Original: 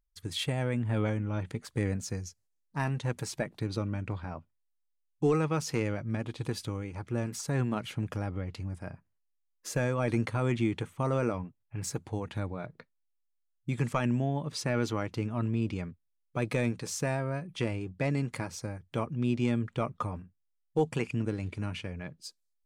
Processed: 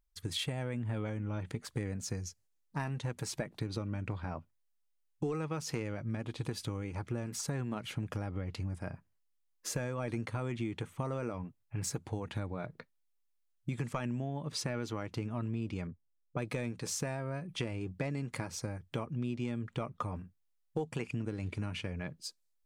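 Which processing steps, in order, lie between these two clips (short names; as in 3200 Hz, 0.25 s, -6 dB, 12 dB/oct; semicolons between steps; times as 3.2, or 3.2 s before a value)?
15.87–16.47 low-pass opened by the level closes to 510 Hz, open at -28.5 dBFS; compressor, threshold -34 dBFS, peak gain reduction 12 dB; gain +1.5 dB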